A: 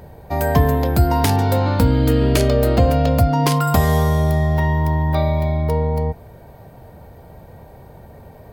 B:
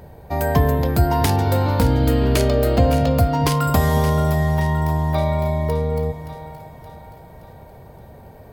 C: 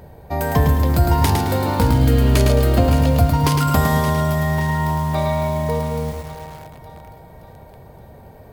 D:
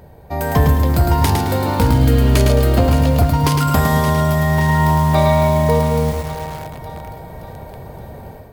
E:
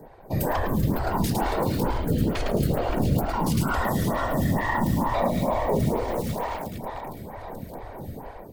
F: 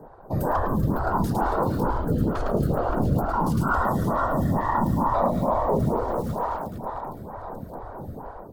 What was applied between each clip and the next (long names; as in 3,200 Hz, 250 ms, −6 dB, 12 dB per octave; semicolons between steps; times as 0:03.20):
echo with a time of its own for lows and highs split 640 Hz, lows 226 ms, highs 572 ms, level −11 dB; level −1.5 dB
feedback echo at a low word length 108 ms, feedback 35%, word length 6 bits, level −4 dB
wavefolder on the positive side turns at −7.5 dBFS; automatic gain control gain up to 9.5 dB; level −1 dB
brickwall limiter −13 dBFS, peak gain reduction 10.5 dB; random phases in short frames; phaser with staggered stages 2.2 Hz
high shelf with overshoot 1,700 Hz −8.5 dB, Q 3